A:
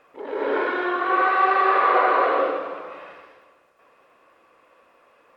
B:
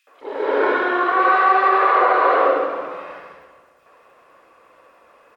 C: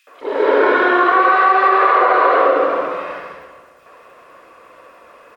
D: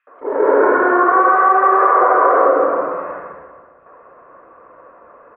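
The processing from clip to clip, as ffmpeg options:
ffmpeg -i in.wav -filter_complex "[0:a]alimiter=limit=-11.5dB:level=0:latency=1:release=113,acrossover=split=260|2800[link_01][link_02][link_03];[link_02]adelay=70[link_04];[link_01]adelay=210[link_05];[link_05][link_04][link_03]amix=inputs=3:normalize=0,volume=6dB" out.wav
ffmpeg -i in.wav -af "bandreject=frequency=820:width=12,acompressor=threshold=-17dB:ratio=6,volume=8dB" out.wav
ffmpeg -i in.wav -af "lowpass=frequency=1500:width=0.5412,lowpass=frequency=1500:width=1.3066,volume=1dB" out.wav

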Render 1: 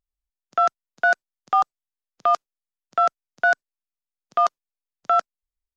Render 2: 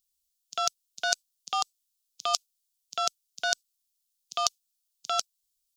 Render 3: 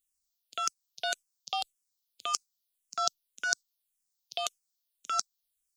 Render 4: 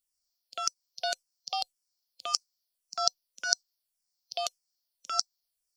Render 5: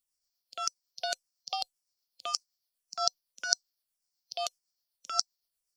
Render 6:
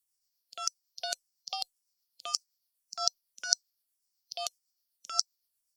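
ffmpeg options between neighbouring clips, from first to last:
ffmpeg -i in.wav -af "aexciter=amount=15.2:drive=6.8:freq=2800,volume=-11dB" out.wav
ffmpeg -i in.wav -filter_complex "[0:a]asplit=2[link_01][link_02];[link_02]afreqshift=-1.8[link_03];[link_01][link_03]amix=inputs=2:normalize=1" out.wav
ffmpeg -i in.wav -af "superequalizer=8b=1.78:9b=1.41:14b=2.82,volume=-2.5dB" out.wav
ffmpeg -i in.wav -af "tremolo=f=7.9:d=0.34" out.wav
ffmpeg -i in.wav -af "aemphasis=mode=production:type=cd,volume=-4dB" out.wav

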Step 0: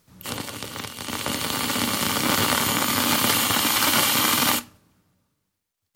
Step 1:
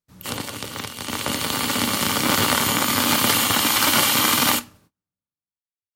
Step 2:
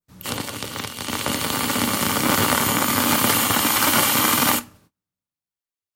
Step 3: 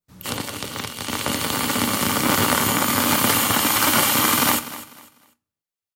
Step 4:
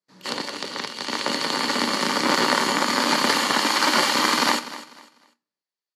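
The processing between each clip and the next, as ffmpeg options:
ffmpeg -i in.wav -af "agate=range=-29dB:threshold=-55dB:ratio=16:detection=peak,volume=2dB" out.wav
ffmpeg -i in.wav -af "adynamicequalizer=threshold=0.02:dfrequency=3900:dqfactor=0.9:tfrequency=3900:tqfactor=0.9:attack=5:release=100:ratio=0.375:range=2.5:mode=cutabove:tftype=bell,volume=1.5dB" out.wav
ffmpeg -i in.wav -af "aecho=1:1:248|496|744:0.168|0.047|0.0132" out.wav
ffmpeg -i in.wav -af "highpass=frequency=180:width=0.5412,highpass=frequency=180:width=1.3066,equalizer=frequency=370:width_type=q:width=4:gain=5,equalizer=frequency=550:width_type=q:width=4:gain=4,equalizer=frequency=960:width_type=q:width=4:gain=6,equalizer=frequency=1800:width_type=q:width=4:gain=7,equalizer=frequency=4500:width_type=q:width=4:gain=10,equalizer=frequency=8700:width_type=q:width=4:gain=-9,lowpass=frequency=9400:width=0.5412,lowpass=frequency=9400:width=1.3066,volume=-3.5dB" out.wav

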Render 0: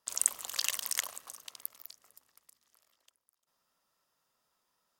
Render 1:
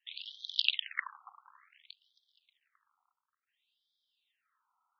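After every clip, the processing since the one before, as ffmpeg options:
ffmpeg -i in.wav -af "highshelf=frequency=4600:width_type=q:width=3:gain=-8.5,afftfilt=real='re*between(b*sr/1024,990*pow(4500/990,0.5+0.5*sin(2*PI*0.57*pts/sr))/1.41,990*pow(4500/990,0.5+0.5*sin(2*PI*0.57*pts/sr))*1.41)':imag='im*between(b*sr/1024,990*pow(4500/990,0.5+0.5*sin(2*PI*0.57*pts/sr))/1.41,990*pow(4500/990,0.5+0.5*sin(2*PI*0.57*pts/sr))*1.41)':win_size=1024:overlap=0.75,volume=3.5dB" out.wav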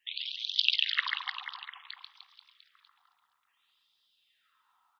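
ffmpeg -i in.wav -filter_complex "[0:a]asplit=2[link_01][link_02];[link_02]alimiter=limit=-20dB:level=0:latency=1:release=312,volume=1.5dB[link_03];[link_01][link_03]amix=inputs=2:normalize=0,aecho=1:1:140|301|486.2|699.1|943.9:0.631|0.398|0.251|0.158|0.1" out.wav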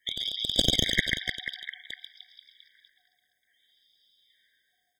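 ffmpeg -i in.wav -af "aeval=exprs='clip(val(0),-1,0.0335)':channel_layout=same,afftfilt=real='re*eq(mod(floor(b*sr/1024/770),2),0)':imag='im*eq(mod(floor(b*sr/1024/770),2),0)':win_size=1024:overlap=0.75,volume=8dB" out.wav

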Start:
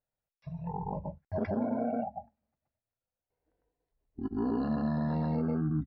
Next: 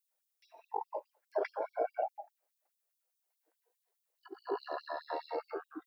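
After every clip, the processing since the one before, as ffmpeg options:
ffmpeg -i in.wav -af "crystalizer=i=4:c=0,highshelf=frequency=2300:gain=-8.5,afftfilt=real='re*gte(b*sr/1024,300*pow(3200/300,0.5+0.5*sin(2*PI*4.8*pts/sr)))':imag='im*gte(b*sr/1024,300*pow(3200/300,0.5+0.5*sin(2*PI*4.8*pts/sr)))':win_size=1024:overlap=0.75,volume=3.5dB" out.wav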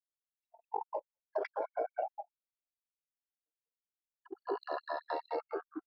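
ffmpeg -i in.wav -af "anlmdn=0.0158,acompressor=threshold=-34dB:ratio=6,volume=3dB" out.wav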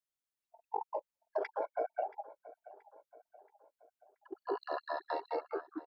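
ffmpeg -i in.wav -filter_complex "[0:a]asplit=2[link_01][link_02];[link_02]adelay=678,lowpass=frequency=2500:poles=1,volume=-18dB,asplit=2[link_03][link_04];[link_04]adelay=678,lowpass=frequency=2500:poles=1,volume=0.53,asplit=2[link_05][link_06];[link_06]adelay=678,lowpass=frequency=2500:poles=1,volume=0.53,asplit=2[link_07][link_08];[link_08]adelay=678,lowpass=frequency=2500:poles=1,volume=0.53[link_09];[link_01][link_03][link_05][link_07][link_09]amix=inputs=5:normalize=0" out.wav

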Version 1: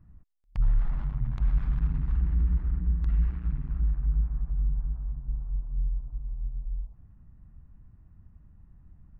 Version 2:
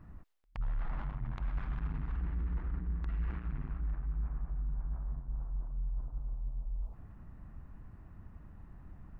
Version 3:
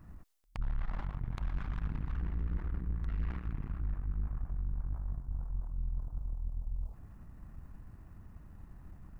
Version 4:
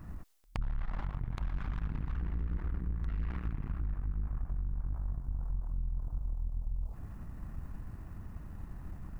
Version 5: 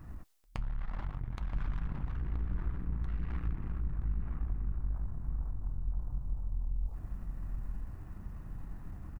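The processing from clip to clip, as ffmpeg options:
ffmpeg -i in.wav -af "bass=frequency=250:gain=-11,treble=frequency=4000:gain=-8,areverse,acompressor=threshold=-47dB:ratio=4,areverse,volume=12.5dB" out.wav
ffmpeg -i in.wav -af "bass=frequency=250:gain=1,treble=frequency=4000:gain=10,aeval=exprs='(tanh(35.5*val(0)+0.7)-tanh(0.7))/35.5':channel_layout=same,volume=3dB" out.wav
ffmpeg -i in.wav -af "acompressor=threshold=-37dB:ratio=6,volume=7dB" out.wav
ffmpeg -i in.wav -filter_complex "[0:a]flanger=delay=2.4:depth=4.8:regen=-75:speed=0.87:shape=sinusoidal,asplit=2[link_01][link_02];[link_02]adelay=975,lowpass=frequency=1200:poles=1,volume=-4.5dB,asplit=2[link_03][link_04];[link_04]adelay=975,lowpass=frequency=1200:poles=1,volume=0.35,asplit=2[link_05][link_06];[link_06]adelay=975,lowpass=frequency=1200:poles=1,volume=0.35,asplit=2[link_07][link_08];[link_08]adelay=975,lowpass=frequency=1200:poles=1,volume=0.35[link_09];[link_03][link_05][link_07][link_09]amix=inputs=4:normalize=0[link_10];[link_01][link_10]amix=inputs=2:normalize=0,volume=2.5dB" out.wav

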